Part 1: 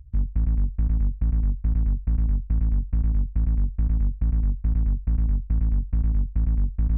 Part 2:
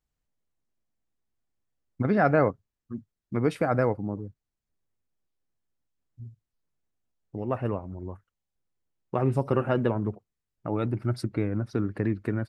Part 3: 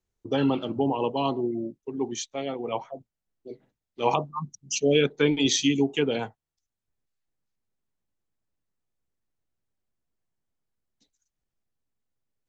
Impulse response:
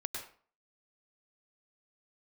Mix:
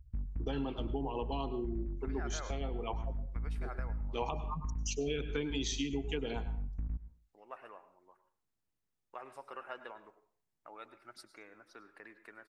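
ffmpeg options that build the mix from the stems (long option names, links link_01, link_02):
-filter_complex "[0:a]volume=-12dB,asplit=2[link_01][link_02];[link_02]volume=-14dB[link_03];[1:a]highpass=1000,volume=-13dB,asplit=2[link_04][link_05];[link_05]volume=-8dB[link_06];[2:a]bandreject=frequency=570:width=12,adelay=150,volume=-5.5dB,asplit=2[link_07][link_08];[link_08]volume=-8dB[link_09];[3:a]atrim=start_sample=2205[link_10];[link_03][link_06][link_09]amix=inputs=3:normalize=0[link_11];[link_11][link_10]afir=irnorm=-1:irlink=0[link_12];[link_01][link_04][link_07][link_12]amix=inputs=4:normalize=0,acompressor=threshold=-34dB:ratio=4"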